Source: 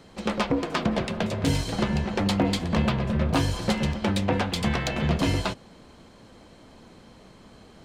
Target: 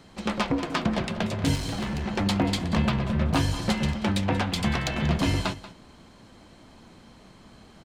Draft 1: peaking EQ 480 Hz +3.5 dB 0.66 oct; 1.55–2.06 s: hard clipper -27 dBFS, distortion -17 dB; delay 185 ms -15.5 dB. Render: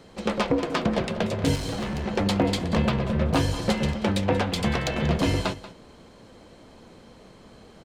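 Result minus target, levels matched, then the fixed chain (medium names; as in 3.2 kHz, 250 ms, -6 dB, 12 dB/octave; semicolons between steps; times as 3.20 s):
500 Hz band +4.5 dB
peaking EQ 480 Hz -5 dB 0.66 oct; 1.55–2.06 s: hard clipper -27 dBFS, distortion -17 dB; delay 185 ms -15.5 dB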